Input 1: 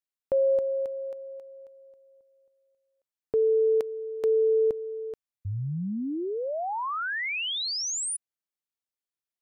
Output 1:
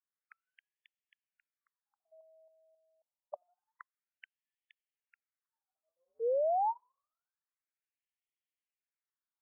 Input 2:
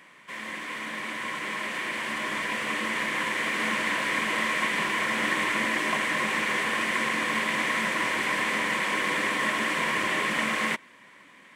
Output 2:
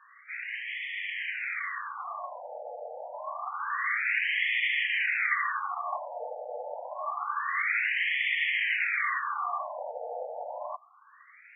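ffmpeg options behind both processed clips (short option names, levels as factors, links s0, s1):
-af "afreqshift=100,afftfilt=real='re*between(b*sr/1024,620*pow(2500/620,0.5+0.5*sin(2*PI*0.27*pts/sr))/1.41,620*pow(2500/620,0.5+0.5*sin(2*PI*0.27*pts/sr))*1.41)':imag='im*between(b*sr/1024,620*pow(2500/620,0.5+0.5*sin(2*PI*0.27*pts/sr))/1.41,620*pow(2500/620,0.5+0.5*sin(2*PI*0.27*pts/sr))*1.41)':win_size=1024:overlap=0.75,volume=1.12"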